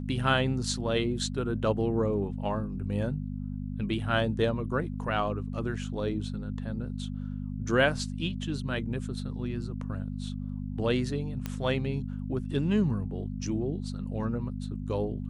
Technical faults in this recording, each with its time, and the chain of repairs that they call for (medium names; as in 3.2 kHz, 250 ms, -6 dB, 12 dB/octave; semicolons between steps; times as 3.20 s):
hum 50 Hz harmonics 5 -35 dBFS
11.46 s: pop -18 dBFS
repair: de-click; de-hum 50 Hz, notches 5